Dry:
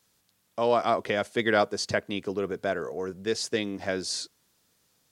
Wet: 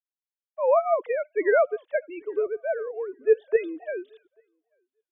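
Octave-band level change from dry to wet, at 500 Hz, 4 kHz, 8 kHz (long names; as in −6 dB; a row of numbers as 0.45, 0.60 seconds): +5.0 dB, below −25 dB, below −40 dB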